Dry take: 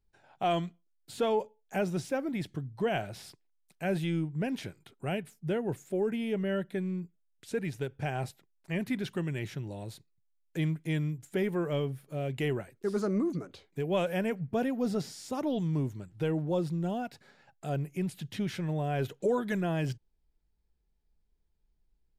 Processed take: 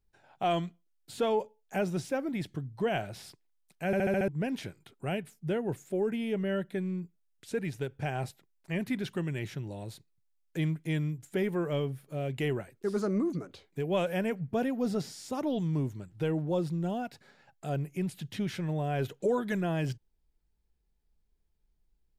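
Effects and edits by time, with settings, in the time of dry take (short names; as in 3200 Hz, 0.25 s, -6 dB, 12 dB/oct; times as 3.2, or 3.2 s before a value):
3.86 stutter in place 0.07 s, 6 plays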